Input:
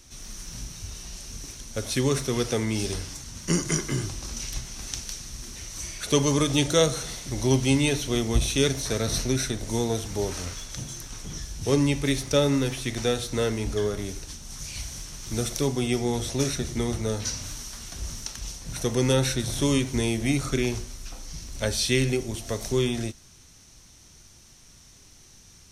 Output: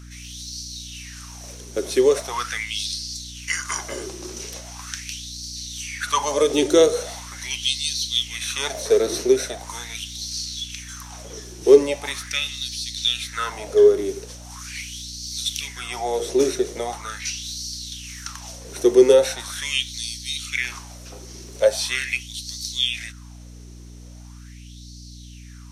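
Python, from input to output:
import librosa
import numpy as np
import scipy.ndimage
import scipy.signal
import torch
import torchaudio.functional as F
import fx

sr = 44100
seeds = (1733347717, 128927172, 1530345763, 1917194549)

y = fx.filter_lfo_highpass(x, sr, shape='sine', hz=0.41, low_hz=360.0, high_hz=4500.0, q=6.6)
y = fx.add_hum(y, sr, base_hz=60, snr_db=17)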